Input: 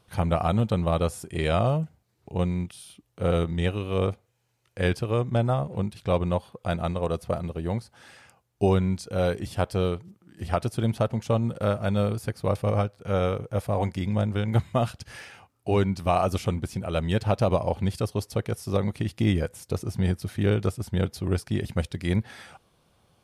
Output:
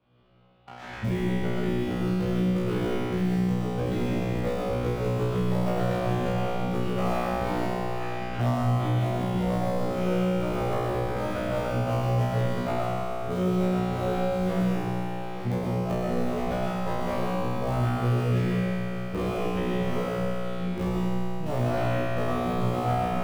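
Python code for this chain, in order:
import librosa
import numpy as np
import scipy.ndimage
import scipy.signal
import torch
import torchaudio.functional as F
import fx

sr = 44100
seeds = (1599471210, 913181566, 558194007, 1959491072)

p1 = np.flip(x).copy()
p2 = scipy.signal.sosfilt(scipy.signal.butter(4, 3400.0, 'lowpass', fs=sr, output='sos'), p1)
p3 = fx.schmitt(p2, sr, flips_db=-20.5)
p4 = p2 + (p3 * 10.0 ** (-3.0 / 20.0))
p5 = fx.peak_eq(p4, sr, hz=190.0, db=5.0, octaves=2.8)
p6 = fx.doubler(p5, sr, ms=25.0, db=-9.0)
p7 = p6 + fx.echo_single(p6, sr, ms=882, db=-20.0, dry=0)
p8 = fx.rev_freeverb(p7, sr, rt60_s=0.82, hf_ratio=0.6, predelay_ms=75, drr_db=-1.0)
p9 = fx.hpss(p8, sr, part='harmonic', gain_db=-7)
p10 = fx.leveller(p9, sr, passes=3)
p11 = fx.comb_fb(p10, sr, f0_hz=61.0, decay_s=1.8, harmonics='all', damping=0.0, mix_pct=100)
p12 = fx.band_squash(p11, sr, depth_pct=70)
y = p12 * 10.0 ** (2.0 / 20.0)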